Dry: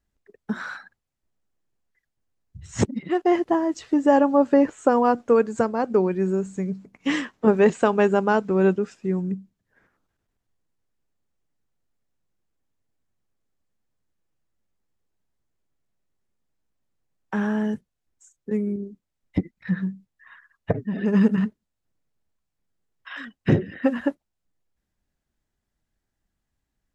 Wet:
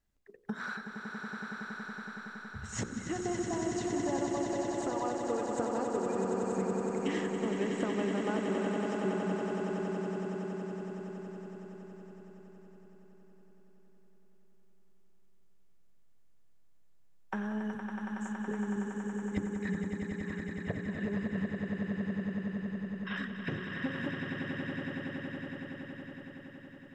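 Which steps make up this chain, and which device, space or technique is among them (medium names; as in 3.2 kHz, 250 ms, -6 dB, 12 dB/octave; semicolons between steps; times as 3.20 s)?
hum notches 60/120/180/240/300/360/420/480/540 Hz; serial compression, leveller first (compression 2:1, threshold -22 dBFS, peak gain reduction 6 dB; compression, threshold -32 dBFS, peak gain reduction 14 dB); echo with a slow build-up 93 ms, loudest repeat 8, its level -7.5 dB; trim -2 dB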